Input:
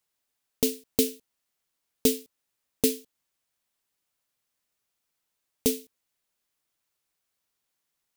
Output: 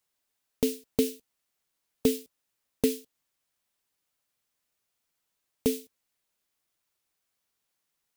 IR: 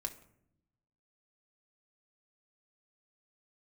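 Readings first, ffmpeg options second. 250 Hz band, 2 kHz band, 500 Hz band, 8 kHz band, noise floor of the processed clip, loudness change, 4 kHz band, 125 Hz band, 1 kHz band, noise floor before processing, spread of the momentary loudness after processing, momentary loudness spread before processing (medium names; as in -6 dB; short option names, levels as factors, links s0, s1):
0.0 dB, -2.5 dB, 0.0 dB, -7.5 dB, -81 dBFS, -3.0 dB, -6.0 dB, 0.0 dB, 0.0 dB, -81 dBFS, 9 LU, 8 LU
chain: -filter_complex "[0:a]acrossover=split=2700[s0][s1];[s1]acompressor=threshold=0.0316:ratio=4:attack=1:release=60[s2];[s0][s2]amix=inputs=2:normalize=0" -ar 44100 -c:a aac -b:a 192k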